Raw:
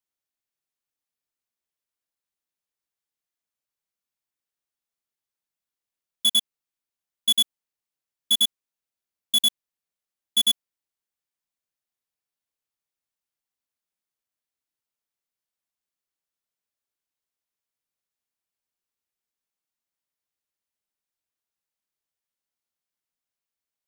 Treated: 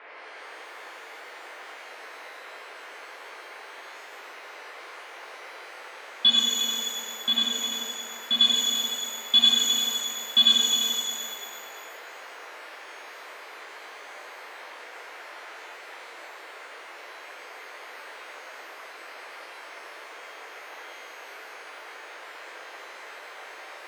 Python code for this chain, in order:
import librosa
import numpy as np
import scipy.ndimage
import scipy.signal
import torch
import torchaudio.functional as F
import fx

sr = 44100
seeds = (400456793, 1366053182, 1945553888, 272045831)

y = scipy.signal.sosfilt(scipy.signal.ellip(4, 1.0, 40, 4300.0, 'lowpass', fs=sr, output='sos'), x)
y = fx.low_shelf(y, sr, hz=380.0, db=-9.0)
y = y + 0.75 * np.pad(y, (int(3.7 * sr / 1000.0), 0))[:len(y)]
y = fx.high_shelf(y, sr, hz=2900.0, db=-10.5, at=(6.32, 8.41))
y = fx.dmg_noise_band(y, sr, seeds[0], low_hz=390.0, high_hz=2300.0, level_db=-55.0)
y = fx.echo_feedback(y, sr, ms=343, feedback_pct=23, wet_db=-8.5)
y = fx.rev_shimmer(y, sr, seeds[1], rt60_s=1.7, semitones=12, shimmer_db=-8, drr_db=-3.0)
y = F.gain(torch.from_numpy(y), 6.0).numpy()